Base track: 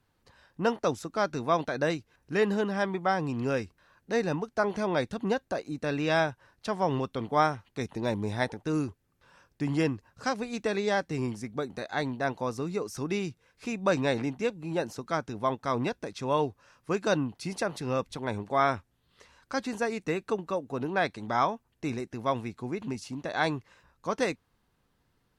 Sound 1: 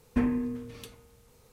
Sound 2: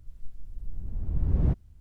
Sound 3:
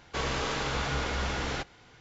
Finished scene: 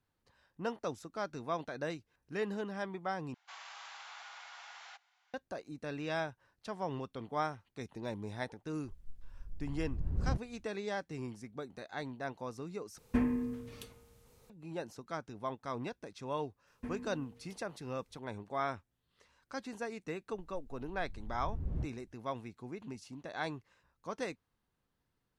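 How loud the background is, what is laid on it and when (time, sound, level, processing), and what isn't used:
base track -10.5 dB
3.34 replace with 3 -16 dB + elliptic high-pass 740 Hz, stop band 60 dB
8.84 add 2 -9.5 dB
12.98 replace with 1 -4 dB
16.67 add 1 -17 dB
20.32 add 2 -13 dB

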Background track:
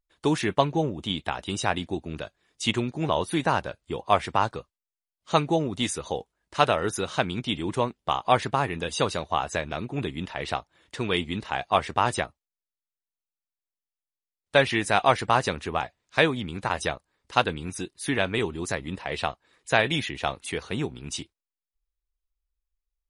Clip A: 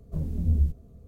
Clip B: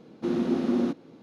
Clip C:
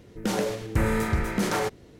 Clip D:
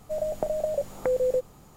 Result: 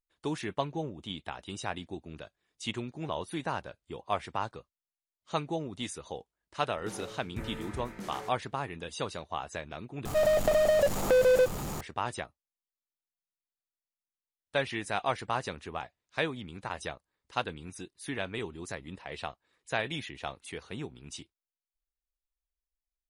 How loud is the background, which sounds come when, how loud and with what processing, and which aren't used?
background track -10 dB
6.61 add C -16.5 dB
10.05 replace with D -3.5 dB + power-law curve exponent 0.5
not used: A, B

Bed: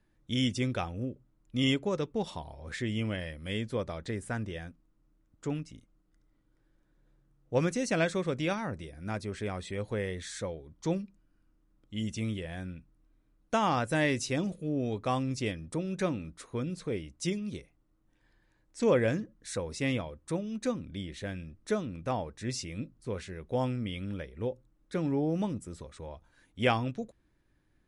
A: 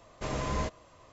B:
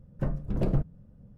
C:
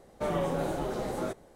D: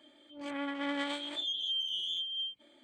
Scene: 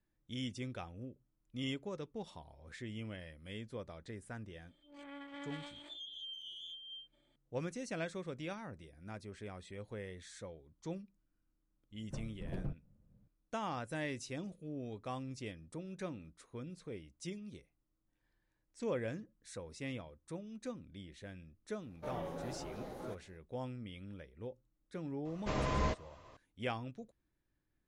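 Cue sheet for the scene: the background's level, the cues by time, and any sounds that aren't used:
bed -12 dB
4.53 add D -13 dB
11.91 add B -15 dB
21.82 add C -13 dB + bell 8000 Hz -12.5 dB 0.27 oct
25.25 add A -1.5 dB + LPF 5200 Hz

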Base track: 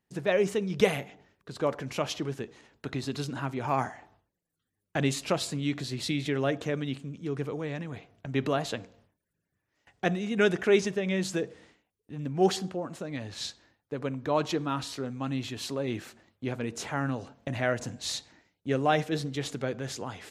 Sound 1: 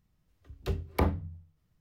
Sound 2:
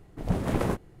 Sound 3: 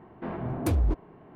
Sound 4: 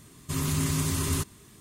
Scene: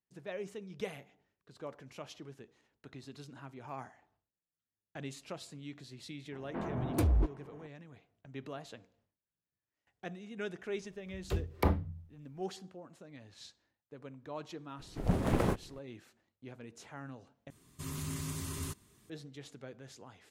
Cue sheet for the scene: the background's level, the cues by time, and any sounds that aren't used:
base track -16 dB
6.32 add 3 -3.5 dB
10.64 add 1 -2 dB
14.79 add 2 -3 dB + tracing distortion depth 0.034 ms
17.5 replace with 4 -12 dB

